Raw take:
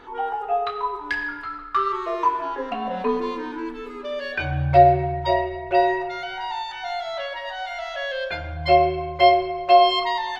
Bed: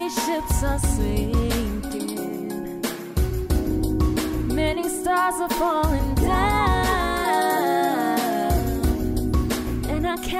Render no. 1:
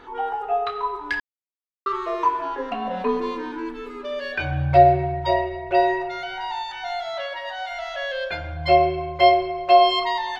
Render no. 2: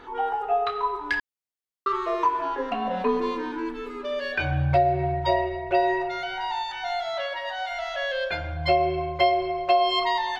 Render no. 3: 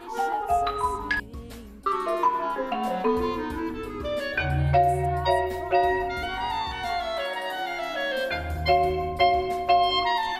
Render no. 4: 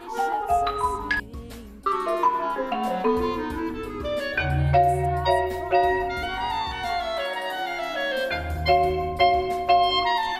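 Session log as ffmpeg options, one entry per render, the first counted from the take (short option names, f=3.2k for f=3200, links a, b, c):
-filter_complex "[0:a]asettb=1/sr,asplit=3[a][b][c];[a]atrim=end=7.064[d];[b]atrim=start=7.06:end=7.7,asetpts=PTS-STARTPTS,afade=t=in:d=0.004:c=qsin,afade=t=out:st=0.636:d=0.004:c=qsin,highpass=f=65:p=1[e];[c]atrim=start=7.696[f];[d][e]acrossfade=d=0.004:c1=hsin:c2=qsin[g];[g][f]acrossfade=d=0.004:c1=qsin:c2=hsin,asplit=3[h][i][j];[h]atrim=end=1.2,asetpts=PTS-STARTPTS,afade=t=out:st=1.196:d=0.004:c=hsin[k];[i]atrim=start=1.2:end=1.86,asetpts=PTS-STARTPTS,volume=0[l];[j]atrim=start=1.86,asetpts=PTS-STARTPTS,afade=t=in:d=0.004:c=hsin[m];[k][l][m]concat=n=3:v=0:a=1"
-af "acompressor=threshold=-17dB:ratio=6"
-filter_complex "[1:a]volume=-18dB[a];[0:a][a]amix=inputs=2:normalize=0"
-af "volume=1.5dB"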